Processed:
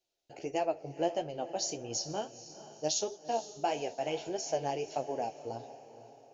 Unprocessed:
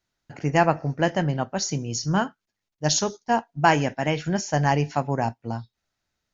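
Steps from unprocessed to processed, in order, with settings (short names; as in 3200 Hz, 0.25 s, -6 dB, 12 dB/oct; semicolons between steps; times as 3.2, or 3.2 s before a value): compressor 2:1, threshold -28 dBFS, peak gain reduction 9 dB; band shelf 1400 Hz -13 dB 1.3 oct; flange 1.6 Hz, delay 7.4 ms, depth 7.2 ms, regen +31%; resonant low shelf 280 Hz -12.5 dB, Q 1.5; diffused feedback echo 0.473 s, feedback 44%, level -14 dB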